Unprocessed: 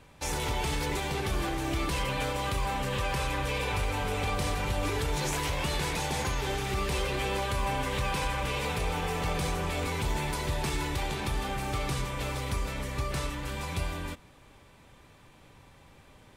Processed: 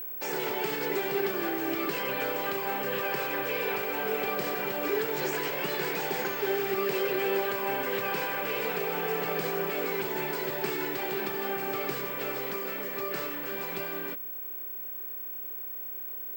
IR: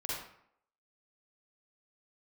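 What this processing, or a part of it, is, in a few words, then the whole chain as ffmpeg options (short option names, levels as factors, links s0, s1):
old television with a line whistle: -filter_complex "[0:a]asettb=1/sr,asplit=3[s0][s1][s2];[s0]atrim=end=12.514[s3];[s1]atrim=start=12.51:end=13.18,asetpts=PTS-STARTPTS,afade=t=in:d=0.004:c=qsin,afade=t=out:st=0.666:d=0.004:c=qsin,highpass=140[s4];[s2]atrim=start=13.176[s5];[s3][s4]acrossfade=d=0.004:c1=hsin:c2=qsin[s6];[s6][s5]acrossfade=d=0.004:c1=qsin:c2=hsin,highpass=f=190:w=0.5412,highpass=f=190:w=1.3066,equalizer=f=250:t=q:w=4:g=-4,equalizer=f=400:t=q:w=4:g=9,equalizer=f=1000:t=q:w=4:g=-4,equalizer=f=1600:t=q:w=4:g=5,equalizer=f=3700:t=q:w=4:g=-7,equalizer=f=6200:t=q:w=4:g=-8,lowpass=f=7400:w=0.5412,lowpass=f=7400:w=1.3066,aeval=exprs='val(0)+0.0178*sin(2*PI*15734*n/s)':c=same"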